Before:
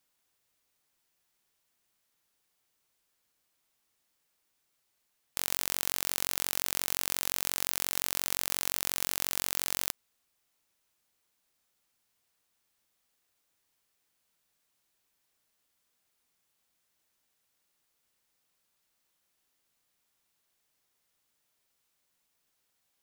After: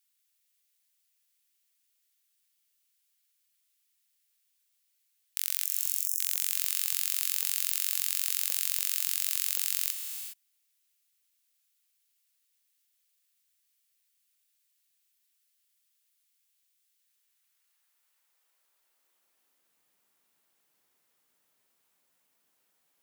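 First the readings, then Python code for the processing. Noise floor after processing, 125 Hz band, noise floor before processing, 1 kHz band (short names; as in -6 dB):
-75 dBFS, under -40 dB, -78 dBFS, -13.0 dB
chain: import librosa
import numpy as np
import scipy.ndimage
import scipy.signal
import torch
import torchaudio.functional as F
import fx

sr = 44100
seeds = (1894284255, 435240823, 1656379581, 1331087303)

y = fx.spec_erase(x, sr, start_s=5.65, length_s=0.54, low_hz=250.0, high_hz=5300.0)
y = fx.peak_eq(y, sr, hz=5000.0, db=-4.5, octaves=1.9)
y = fx.filter_sweep_highpass(y, sr, from_hz=2900.0, to_hz=150.0, start_s=16.96, end_s=19.87, q=0.74)
y = fx.rev_gated(y, sr, seeds[0], gate_ms=440, shape='rising', drr_db=6.0)
y = y * 10.0 ** (3.5 / 20.0)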